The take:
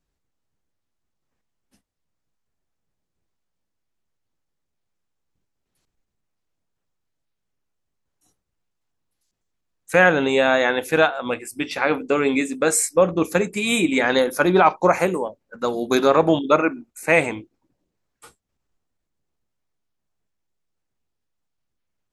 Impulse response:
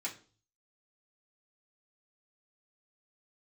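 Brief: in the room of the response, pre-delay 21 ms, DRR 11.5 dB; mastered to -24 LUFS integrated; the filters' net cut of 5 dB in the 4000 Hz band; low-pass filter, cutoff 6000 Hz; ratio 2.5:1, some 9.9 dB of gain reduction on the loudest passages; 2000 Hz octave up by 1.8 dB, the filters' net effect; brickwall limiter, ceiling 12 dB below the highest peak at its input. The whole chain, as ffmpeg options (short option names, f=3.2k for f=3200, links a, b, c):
-filter_complex "[0:a]lowpass=6k,equalizer=f=2k:t=o:g=4,equalizer=f=4k:t=o:g=-7,acompressor=threshold=-25dB:ratio=2.5,alimiter=limit=-20.5dB:level=0:latency=1,asplit=2[a][b];[1:a]atrim=start_sample=2205,adelay=21[c];[b][c]afir=irnorm=-1:irlink=0,volume=-13dB[d];[a][d]amix=inputs=2:normalize=0,volume=7.5dB"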